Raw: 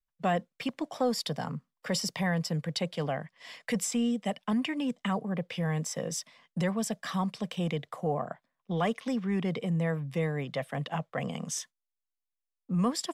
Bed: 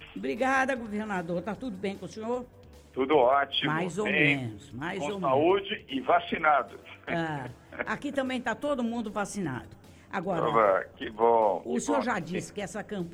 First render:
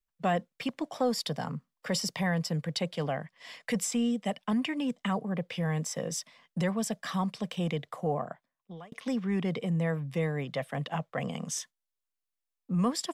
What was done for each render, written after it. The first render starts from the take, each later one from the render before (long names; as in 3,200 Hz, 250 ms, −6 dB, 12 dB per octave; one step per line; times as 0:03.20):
0:08.15–0:08.92: fade out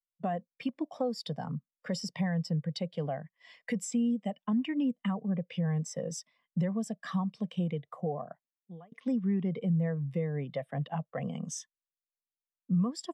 downward compressor 6 to 1, threshold −30 dBFS, peak gain reduction 8 dB
every bin expanded away from the loudest bin 1.5 to 1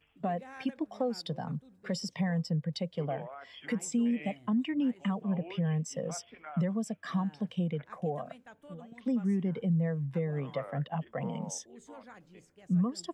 mix in bed −22.5 dB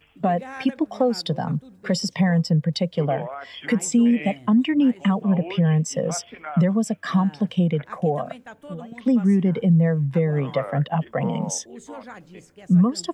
level +11.5 dB